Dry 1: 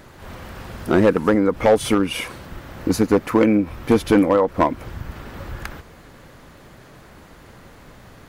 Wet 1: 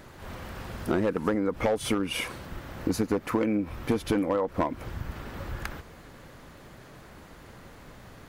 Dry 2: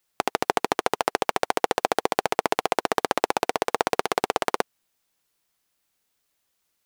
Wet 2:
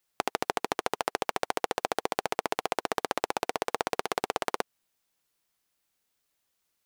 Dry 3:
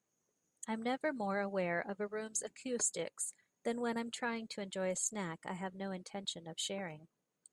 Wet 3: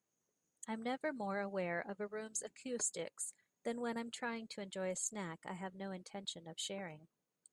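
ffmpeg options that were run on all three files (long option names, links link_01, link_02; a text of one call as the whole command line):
ffmpeg -i in.wav -af "acompressor=threshold=-19dB:ratio=6,volume=-3.5dB" out.wav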